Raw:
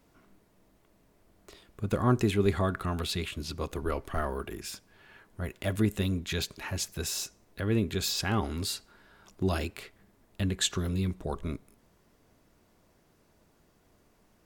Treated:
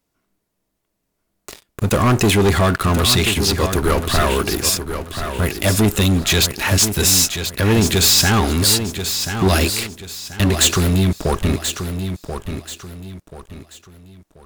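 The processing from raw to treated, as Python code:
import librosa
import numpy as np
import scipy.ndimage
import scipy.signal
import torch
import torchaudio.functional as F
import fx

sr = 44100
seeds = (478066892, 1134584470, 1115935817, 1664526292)

y = fx.high_shelf(x, sr, hz=3300.0, db=9.5)
y = fx.leveller(y, sr, passes=5)
y = fx.echo_feedback(y, sr, ms=1034, feedback_pct=33, wet_db=-8.5)
y = y * librosa.db_to_amplitude(-1.5)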